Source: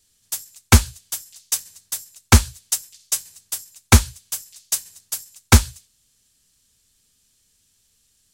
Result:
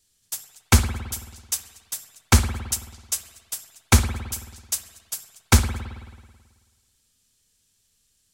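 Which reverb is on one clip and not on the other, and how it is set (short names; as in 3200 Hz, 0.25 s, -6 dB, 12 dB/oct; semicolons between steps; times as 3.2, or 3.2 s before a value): spring tank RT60 1.5 s, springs 54 ms, chirp 60 ms, DRR 9 dB; gain -4 dB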